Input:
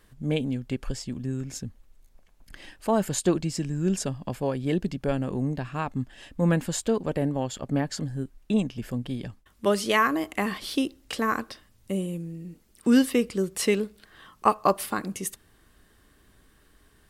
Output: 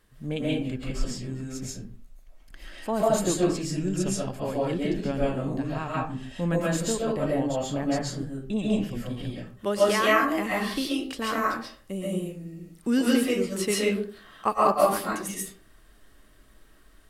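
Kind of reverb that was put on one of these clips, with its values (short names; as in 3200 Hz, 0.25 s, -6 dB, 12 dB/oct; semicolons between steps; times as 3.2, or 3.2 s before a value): digital reverb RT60 0.43 s, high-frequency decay 0.65×, pre-delay 95 ms, DRR -6 dB; gain -5 dB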